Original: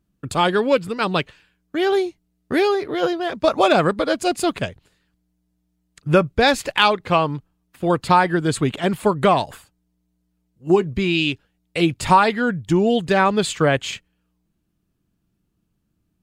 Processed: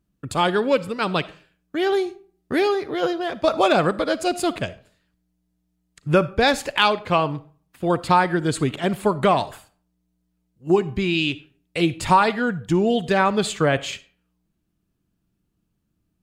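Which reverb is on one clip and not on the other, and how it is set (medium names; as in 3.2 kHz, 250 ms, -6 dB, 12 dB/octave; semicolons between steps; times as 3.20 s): algorithmic reverb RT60 0.45 s, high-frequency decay 0.65×, pre-delay 15 ms, DRR 16.5 dB; trim -2 dB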